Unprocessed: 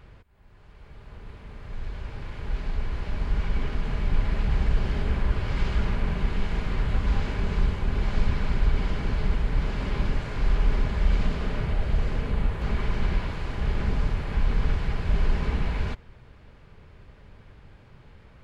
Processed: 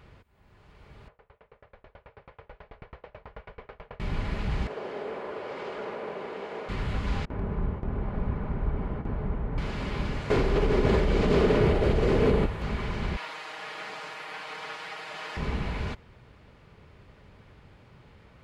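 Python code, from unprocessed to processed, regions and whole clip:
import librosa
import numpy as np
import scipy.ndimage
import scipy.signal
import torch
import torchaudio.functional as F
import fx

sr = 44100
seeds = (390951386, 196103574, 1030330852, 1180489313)

y = fx.chain(x, sr, fx.lowpass(hz=2300.0, slope=12),
    fx.low_shelf_res(hz=380.0, db=-8.5, q=3.0),
    fx.tremolo_decay(direction='decaying', hz=9.2, depth_db=32), at=(1.08, 4.0))
y = fx.chain(y, sr, fx.highpass_res(hz=470.0, q=2.1),
    fx.high_shelf(hz=2200.0, db=-11.5), at=(4.67, 6.69))
y = fx.chain(y, sr, fx.lowpass(hz=1100.0, slope=12),
    fx.gate_hold(open_db=-18.0, close_db=-23.0, hold_ms=71.0, range_db=-21, attack_ms=1.4, release_ms=100.0), at=(7.25, 9.58))
y = fx.chain(y, sr, fx.peak_eq(hz=400.0, db=12.0, octaves=1.1),
    fx.env_flatten(amount_pct=70), at=(10.3, 12.46))
y = fx.chain(y, sr, fx.highpass(hz=770.0, slope=12),
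    fx.comb(ms=6.4, depth=0.89), at=(13.16, 15.37))
y = fx.highpass(y, sr, hz=87.0, slope=6)
y = fx.notch(y, sr, hz=1600.0, q=21.0)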